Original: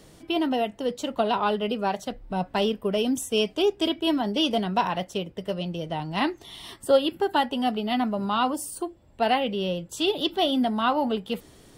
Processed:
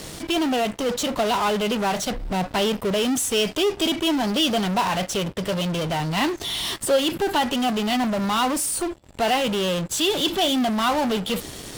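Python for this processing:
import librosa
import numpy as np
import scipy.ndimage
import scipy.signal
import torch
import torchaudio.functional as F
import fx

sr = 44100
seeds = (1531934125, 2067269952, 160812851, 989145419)

p1 = fx.peak_eq(x, sr, hz=5600.0, db=5.5, octaves=2.7)
p2 = fx.fuzz(p1, sr, gain_db=44.0, gate_db=-53.0)
p3 = p1 + (p2 * 10.0 ** (-10.0 / 20.0))
y = p3 * 10.0 ** (-3.5 / 20.0)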